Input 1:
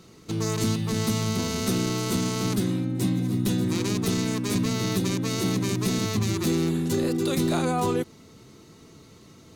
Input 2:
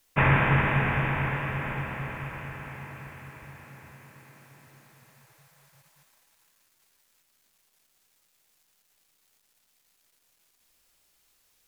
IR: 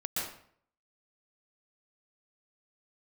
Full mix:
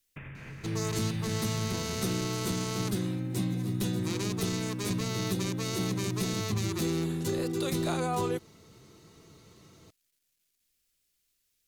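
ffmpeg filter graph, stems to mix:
-filter_complex "[0:a]equalizer=f=250:t=o:w=0.33:g=-8,adelay=350,volume=0.596[s0];[1:a]equalizer=f=890:w=0.92:g=-13.5,alimiter=limit=0.0944:level=0:latency=1:release=355,acompressor=threshold=0.0224:ratio=10,volume=0.398[s1];[s0][s1]amix=inputs=2:normalize=0"

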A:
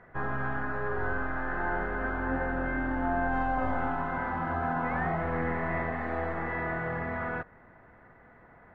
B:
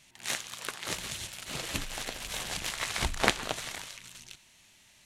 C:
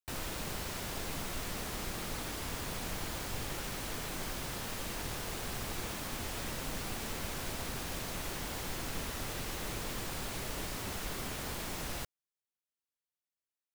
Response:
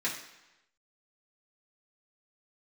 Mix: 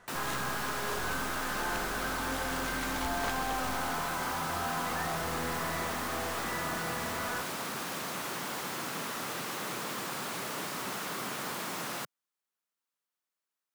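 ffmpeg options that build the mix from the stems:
-filter_complex "[0:a]volume=0.473[s0];[1:a]volume=0.316[s1];[2:a]highpass=f=150:w=0.5412,highpass=f=150:w=1.3066,volume=1.33[s2];[s0][s1][s2]amix=inputs=3:normalize=0,equalizer=f=1200:t=o:w=1:g=6.5,asoftclip=type=tanh:threshold=0.0596"

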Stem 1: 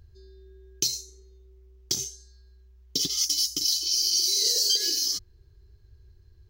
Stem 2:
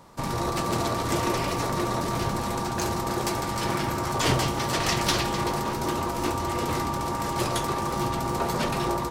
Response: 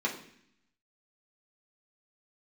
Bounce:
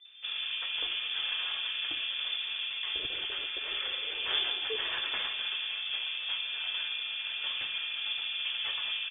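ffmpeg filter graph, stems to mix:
-filter_complex "[0:a]aecho=1:1:2.5:0.65,volume=0.501[s0];[1:a]adelay=50,volume=0.335,asplit=2[s1][s2];[s2]volume=0.335[s3];[2:a]atrim=start_sample=2205[s4];[s3][s4]afir=irnorm=-1:irlink=0[s5];[s0][s1][s5]amix=inputs=3:normalize=0,lowpass=f=3100:t=q:w=0.5098,lowpass=f=3100:t=q:w=0.6013,lowpass=f=3100:t=q:w=0.9,lowpass=f=3100:t=q:w=2.563,afreqshift=-3600"

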